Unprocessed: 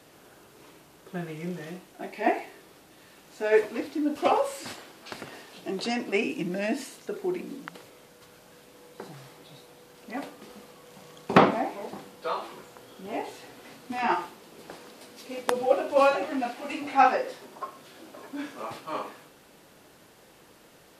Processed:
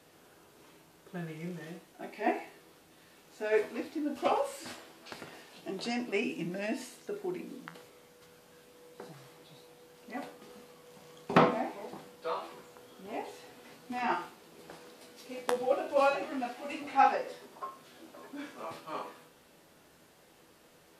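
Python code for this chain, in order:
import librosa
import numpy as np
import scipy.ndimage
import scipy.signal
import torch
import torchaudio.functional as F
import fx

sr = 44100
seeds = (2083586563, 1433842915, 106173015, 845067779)

y = fx.comb_fb(x, sr, f0_hz=82.0, decay_s=0.27, harmonics='all', damping=0.0, mix_pct=70)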